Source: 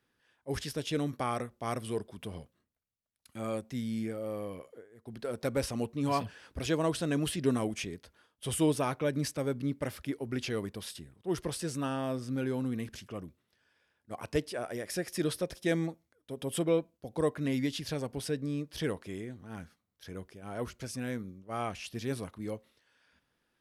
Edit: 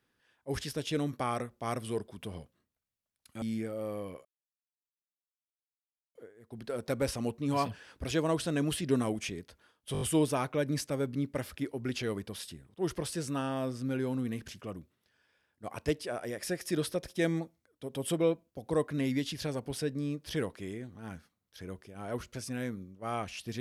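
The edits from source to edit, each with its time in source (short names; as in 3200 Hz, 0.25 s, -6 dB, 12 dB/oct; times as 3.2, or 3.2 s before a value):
3.42–3.87 cut
4.7 insert silence 1.90 s
8.48 stutter 0.02 s, 5 plays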